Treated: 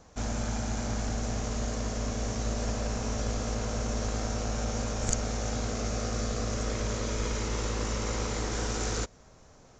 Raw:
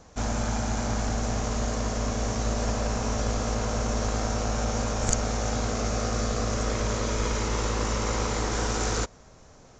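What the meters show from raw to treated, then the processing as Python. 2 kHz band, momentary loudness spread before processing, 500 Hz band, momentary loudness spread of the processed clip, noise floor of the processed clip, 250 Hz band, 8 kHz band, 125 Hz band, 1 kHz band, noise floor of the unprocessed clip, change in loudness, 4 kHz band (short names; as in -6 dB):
-5.0 dB, 2 LU, -4.5 dB, 2 LU, -56 dBFS, -3.5 dB, -3.5 dB, -3.5 dB, -6.5 dB, -52 dBFS, -4.0 dB, -3.5 dB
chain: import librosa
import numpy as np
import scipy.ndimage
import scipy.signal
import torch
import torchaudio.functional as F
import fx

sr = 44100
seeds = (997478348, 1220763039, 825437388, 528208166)

y = fx.dynamic_eq(x, sr, hz=990.0, q=1.2, threshold_db=-44.0, ratio=4.0, max_db=-4)
y = y * 10.0 ** (-3.5 / 20.0)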